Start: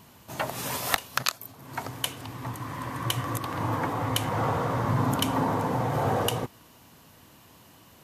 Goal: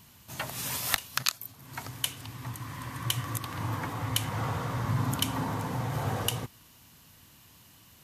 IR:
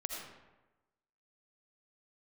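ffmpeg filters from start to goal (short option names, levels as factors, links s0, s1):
-af "equalizer=f=530:t=o:w=2.9:g=-11,volume=1.12"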